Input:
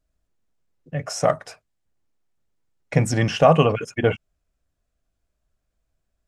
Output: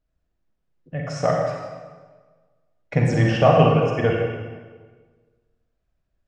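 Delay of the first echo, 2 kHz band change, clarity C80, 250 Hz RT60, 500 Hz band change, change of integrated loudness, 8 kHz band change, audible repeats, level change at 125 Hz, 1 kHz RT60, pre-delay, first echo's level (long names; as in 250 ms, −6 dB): no echo audible, +0.5 dB, 3.0 dB, 1.5 s, +1.0 dB, +0.5 dB, can't be measured, no echo audible, +2.5 dB, 1.4 s, 36 ms, no echo audible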